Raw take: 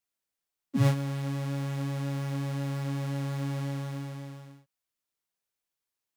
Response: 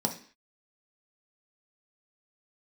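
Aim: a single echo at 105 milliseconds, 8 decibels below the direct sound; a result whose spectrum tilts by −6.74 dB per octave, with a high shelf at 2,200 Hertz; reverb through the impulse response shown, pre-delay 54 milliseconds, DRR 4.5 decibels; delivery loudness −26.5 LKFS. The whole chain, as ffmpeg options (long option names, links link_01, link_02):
-filter_complex "[0:a]highshelf=frequency=2200:gain=8.5,aecho=1:1:105:0.398,asplit=2[link_01][link_02];[1:a]atrim=start_sample=2205,adelay=54[link_03];[link_02][link_03]afir=irnorm=-1:irlink=0,volume=-11dB[link_04];[link_01][link_04]amix=inputs=2:normalize=0,volume=0.5dB"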